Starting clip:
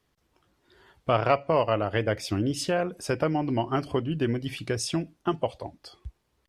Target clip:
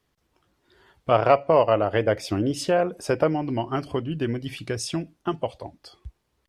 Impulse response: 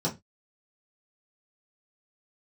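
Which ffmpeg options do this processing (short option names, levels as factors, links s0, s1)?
-filter_complex "[0:a]asettb=1/sr,asplit=3[s0][s1][s2];[s0]atrim=end=1.114[s3];[s1]atrim=start=1.11:end=3.35,asetpts=PTS-STARTPTS,afade=t=in:d=0.004:c=qsin,afade=t=out:st=2.236:d=0.004:c=qsin,equalizer=f=600:t=o:w=2:g=6[s4];[s2]atrim=start=3.346[s5];[s3][s4]acrossfade=d=0.004:c1=hsin:c2=qsin[s6];[s6][s5]acrossfade=d=0.004:c1=qsin:c2=hsin"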